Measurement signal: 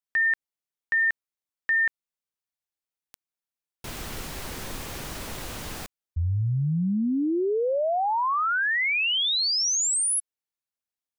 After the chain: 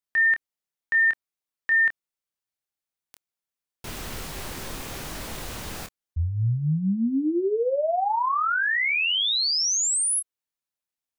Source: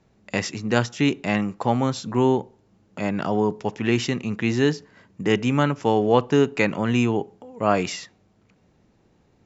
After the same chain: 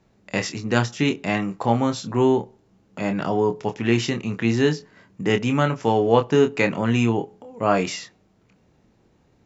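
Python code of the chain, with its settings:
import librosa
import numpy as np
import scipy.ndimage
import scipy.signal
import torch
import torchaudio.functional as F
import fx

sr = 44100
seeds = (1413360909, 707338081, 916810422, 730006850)

y = fx.doubler(x, sr, ms=26.0, db=-7.5)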